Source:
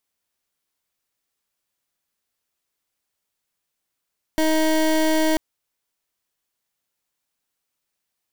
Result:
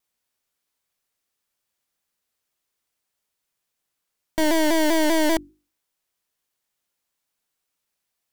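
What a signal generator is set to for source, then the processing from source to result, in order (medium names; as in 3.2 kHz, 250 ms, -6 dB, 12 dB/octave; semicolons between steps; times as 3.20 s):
pulse 315 Hz, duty 24% -18.5 dBFS 0.99 s
hum notches 50/100/150/200/250/300/350 Hz; vibrato with a chosen wave saw down 5.1 Hz, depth 100 cents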